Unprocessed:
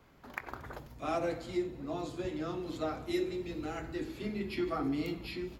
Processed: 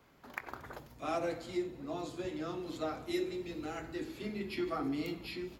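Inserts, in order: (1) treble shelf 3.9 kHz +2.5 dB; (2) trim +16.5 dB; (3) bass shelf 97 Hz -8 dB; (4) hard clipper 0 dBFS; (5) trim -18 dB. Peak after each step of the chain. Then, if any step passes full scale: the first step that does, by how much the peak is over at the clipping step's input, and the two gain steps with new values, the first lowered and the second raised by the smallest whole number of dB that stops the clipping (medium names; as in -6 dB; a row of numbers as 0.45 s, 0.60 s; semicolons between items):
-18.5 dBFS, -2.0 dBFS, -2.0 dBFS, -2.0 dBFS, -20.0 dBFS; nothing clips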